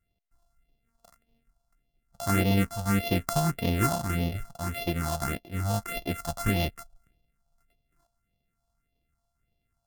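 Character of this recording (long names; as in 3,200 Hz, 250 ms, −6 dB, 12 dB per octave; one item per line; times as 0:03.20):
a buzz of ramps at a fixed pitch in blocks of 64 samples
phaser sweep stages 4, 1.7 Hz, lowest notch 350–1,400 Hz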